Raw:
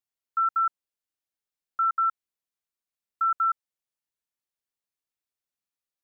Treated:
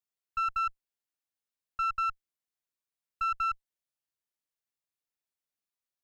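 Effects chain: single-diode clipper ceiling -28 dBFS; trim -3 dB

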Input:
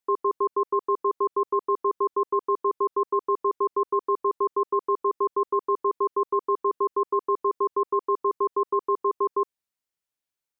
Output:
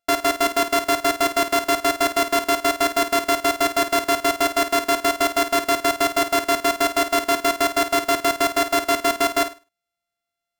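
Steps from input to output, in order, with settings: sorted samples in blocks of 64 samples; flutter echo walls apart 8.8 m, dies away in 0.29 s; trim +4.5 dB

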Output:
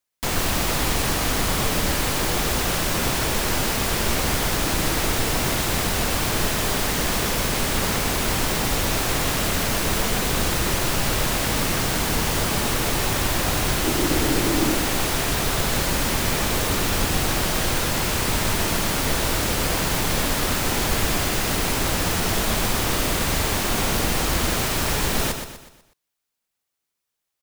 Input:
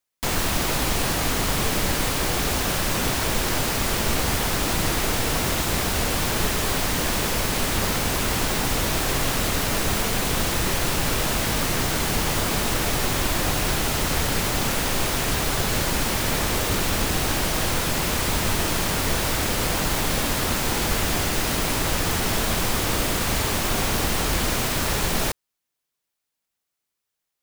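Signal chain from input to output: 13.84–14.78 s: peaking EQ 320 Hz +13.5 dB 0.46 oct; on a send: feedback delay 123 ms, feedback 43%, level -7.5 dB

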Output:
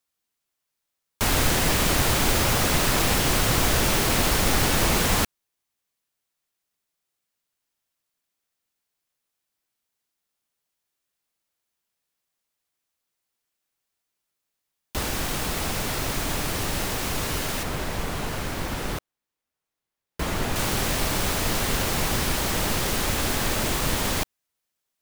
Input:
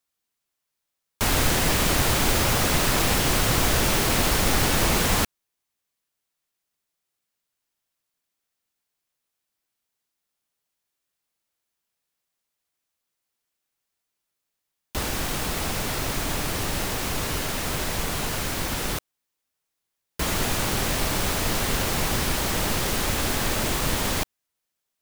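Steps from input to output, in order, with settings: 17.63–20.56 s: treble shelf 3 kHz -8 dB

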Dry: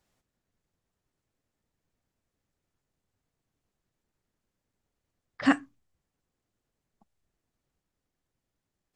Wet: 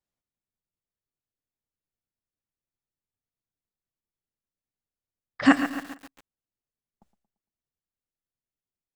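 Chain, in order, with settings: gate with hold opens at -54 dBFS; feedback delay 114 ms, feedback 42%, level -13.5 dB; bit-crushed delay 138 ms, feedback 55%, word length 7-bit, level -10.5 dB; trim +5 dB

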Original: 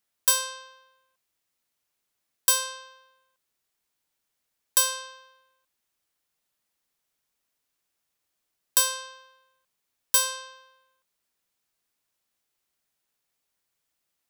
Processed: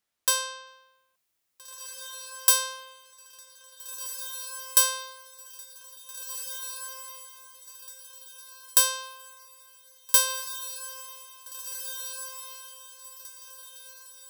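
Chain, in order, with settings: treble shelf 10 kHz -7 dB, from 0.67 s +3.5 dB; echo that smears into a reverb 1789 ms, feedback 40%, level -10 dB

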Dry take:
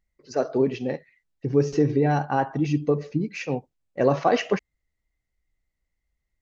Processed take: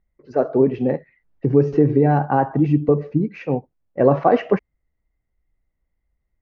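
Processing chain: Bessel low-pass 1.2 kHz, order 2; 0.78–2.89 s: three bands compressed up and down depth 40%; trim +6 dB

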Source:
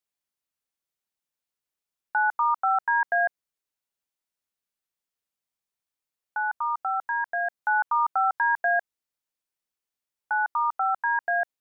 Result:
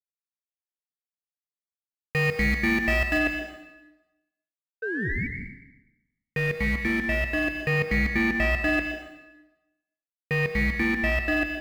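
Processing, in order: local Wiener filter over 15 samples; small samples zeroed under -34 dBFS; 4.82–5.27 s: painted sound rise 530–1300 Hz -37 dBFS; waveshaping leveller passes 3; ring modulator 1 kHz; tone controls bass +2 dB, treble -9 dB, from 3.17 s treble -15 dB; reverberation RT60 1.0 s, pre-delay 113 ms, DRR 5 dB

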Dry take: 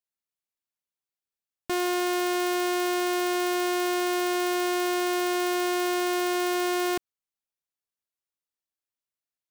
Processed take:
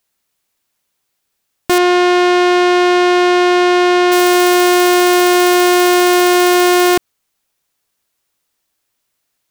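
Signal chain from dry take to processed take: 1.78–4.12 s: low-pass 4.2 kHz 12 dB/octave; loudness maximiser +26.5 dB; trim -4.5 dB

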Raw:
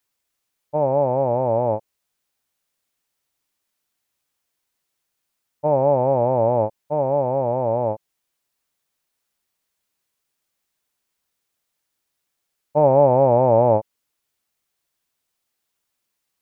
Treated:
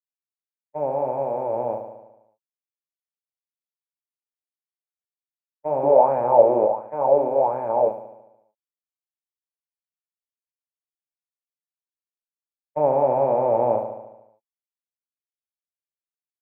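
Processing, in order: high-pass 160 Hz 12 dB/octave; tilt EQ +2 dB/octave; expander -20 dBFS; flange 1.5 Hz, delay 3.4 ms, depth 6.3 ms, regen -48%; feedback delay 73 ms, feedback 60%, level -8 dB; 5.83–7.89 s: sweeping bell 1.4 Hz 320–1700 Hz +15 dB

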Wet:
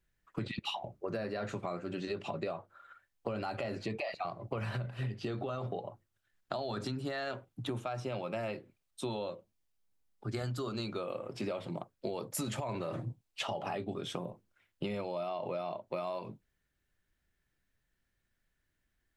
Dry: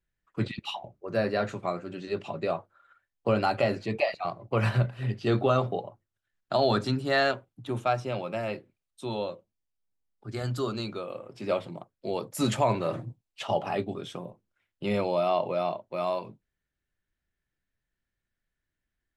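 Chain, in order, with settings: peak limiter -22.5 dBFS, peak gain reduction 10 dB; compression 10:1, threshold -38 dBFS, peak gain reduction 12.5 dB; trim +4.5 dB

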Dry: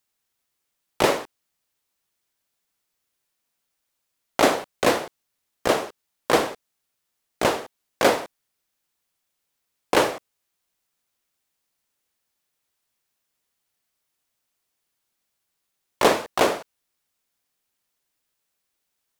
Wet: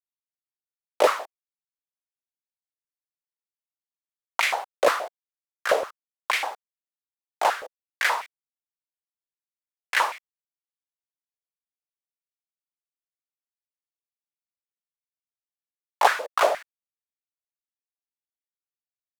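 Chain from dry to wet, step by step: bit crusher 9-bit; step-sequenced high-pass 8.4 Hz 540–2200 Hz; trim -5 dB

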